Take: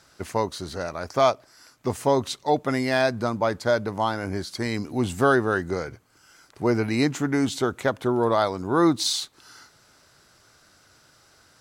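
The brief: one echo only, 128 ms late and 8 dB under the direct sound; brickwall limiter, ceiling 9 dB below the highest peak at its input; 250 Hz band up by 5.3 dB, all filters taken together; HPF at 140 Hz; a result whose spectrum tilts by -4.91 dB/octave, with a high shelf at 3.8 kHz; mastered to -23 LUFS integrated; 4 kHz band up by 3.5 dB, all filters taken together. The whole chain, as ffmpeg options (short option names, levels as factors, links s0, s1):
-af "highpass=140,equalizer=f=250:t=o:g=7,highshelf=f=3800:g=-6,equalizer=f=4000:t=o:g=7.5,alimiter=limit=0.224:level=0:latency=1,aecho=1:1:128:0.398,volume=1.19"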